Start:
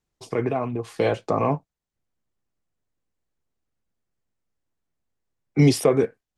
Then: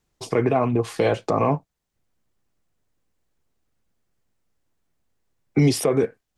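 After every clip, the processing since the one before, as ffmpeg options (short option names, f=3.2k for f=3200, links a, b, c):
-af "alimiter=limit=-16.5dB:level=0:latency=1:release=277,volume=7.5dB"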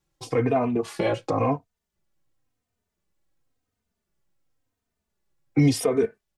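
-filter_complex "[0:a]asplit=2[a][b];[b]adelay=3.1,afreqshift=-0.94[c];[a][c]amix=inputs=2:normalize=1"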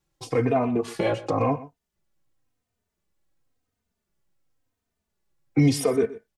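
-af "aecho=1:1:124:0.133"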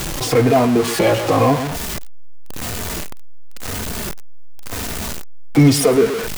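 -af "aeval=exprs='val(0)+0.5*0.0596*sgn(val(0))':c=same,volume=6.5dB"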